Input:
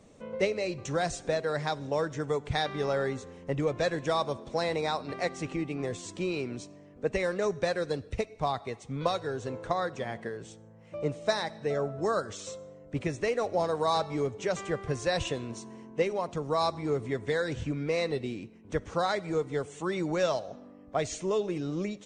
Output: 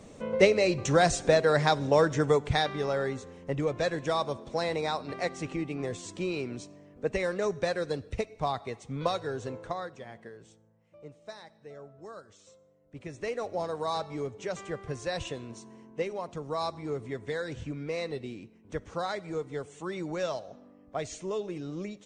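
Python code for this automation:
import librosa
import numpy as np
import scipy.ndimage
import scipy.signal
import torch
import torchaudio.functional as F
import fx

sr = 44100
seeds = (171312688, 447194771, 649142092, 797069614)

y = fx.gain(x, sr, db=fx.line((2.26, 7.0), (2.83, -0.5), (9.44, -0.5), (10.0, -9.5), (10.51, -9.5), (10.95, -16.5), (12.81, -16.5), (13.28, -4.5)))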